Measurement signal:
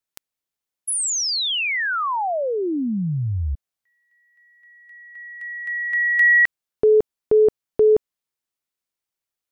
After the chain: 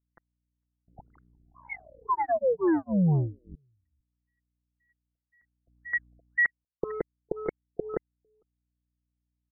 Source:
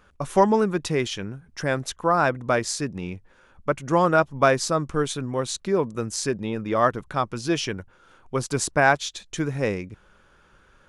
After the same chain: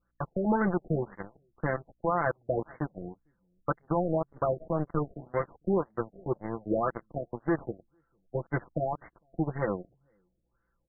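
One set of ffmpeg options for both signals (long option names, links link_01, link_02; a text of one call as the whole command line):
ffmpeg -i in.wav -af "aecho=1:1:5.9:0.81,adynamicequalizer=threshold=0.0178:dfrequency=830:dqfactor=3.4:tfrequency=830:tqfactor=3.4:attack=5:release=100:ratio=0.375:range=2.5:mode=cutabove:tftype=bell,alimiter=limit=-13dB:level=0:latency=1:release=67,aeval=exprs='val(0)+0.00141*(sin(2*PI*60*n/s)+sin(2*PI*2*60*n/s)/2+sin(2*PI*3*60*n/s)/3+sin(2*PI*4*60*n/s)/4+sin(2*PI*5*60*n/s)/5)':channel_layout=same,aecho=1:1:453:0.106,aeval=exprs='0.251*(cos(1*acos(clip(val(0)/0.251,-1,1)))-cos(1*PI/2))+0.0398*(cos(7*acos(clip(val(0)/0.251,-1,1)))-cos(7*PI/2))':channel_layout=same,afftfilt=real='re*lt(b*sr/1024,690*pow(2200/690,0.5+0.5*sin(2*PI*1.9*pts/sr)))':imag='im*lt(b*sr/1024,690*pow(2200/690,0.5+0.5*sin(2*PI*1.9*pts/sr)))':win_size=1024:overlap=0.75,volume=-4.5dB" out.wav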